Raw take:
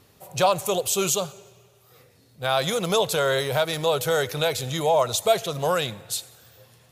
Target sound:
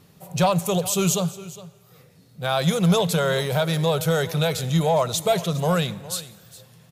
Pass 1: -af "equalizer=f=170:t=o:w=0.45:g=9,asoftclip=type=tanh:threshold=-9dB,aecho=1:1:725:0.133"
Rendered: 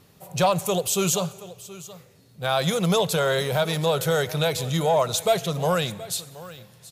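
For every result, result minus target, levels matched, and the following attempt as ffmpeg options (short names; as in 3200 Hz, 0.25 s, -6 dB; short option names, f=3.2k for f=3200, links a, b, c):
echo 0.316 s late; 125 Hz band -3.0 dB
-af "equalizer=f=170:t=o:w=0.45:g=9,asoftclip=type=tanh:threshold=-9dB,aecho=1:1:409:0.133"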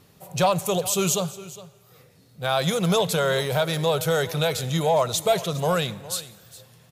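125 Hz band -3.0 dB
-af "equalizer=f=170:t=o:w=0.45:g=15.5,asoftclip=type=tanh:threshold=-9dB,aecho=1:1:409:0.133"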